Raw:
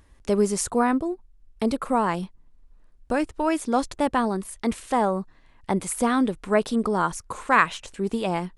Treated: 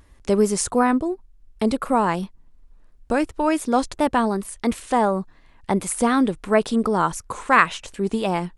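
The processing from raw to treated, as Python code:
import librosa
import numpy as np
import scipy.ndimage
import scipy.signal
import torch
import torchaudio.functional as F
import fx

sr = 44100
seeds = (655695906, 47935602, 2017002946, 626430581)

y = fx.vibrato(x, sr, rate_hz=2.8, depth_cents=50.0)
y = y * 10.0 ** (3.0 / 20.0)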